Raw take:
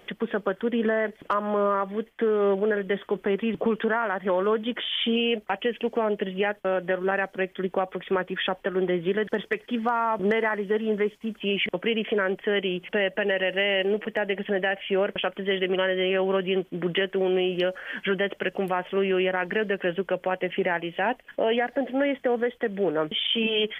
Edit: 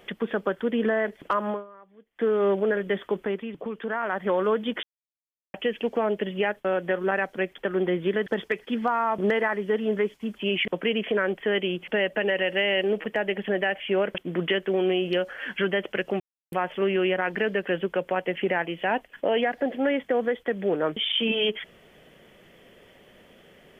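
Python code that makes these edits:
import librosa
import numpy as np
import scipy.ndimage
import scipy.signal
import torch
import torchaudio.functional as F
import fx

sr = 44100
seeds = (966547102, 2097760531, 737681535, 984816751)

y = fx.edit(x, sr, fx.fade_down_up(start_s=1.5, length_s=0.74, db=-24.0, fade_s=0.17, curve='qua'),
    fx.fade_down_up(start_s=3.13, length_s=1.02, db=-9.0, fade_s=0.35),
    fx.silence(start_s=4.83, length_s=0.71),
    fx.cut(start_s=7.58, length_s=1.01),
    fx.cut(start_s=15.19, length_s=1.46),
    fx.insert_silence(at_s=18.67, length_s=0.32), tone=tone)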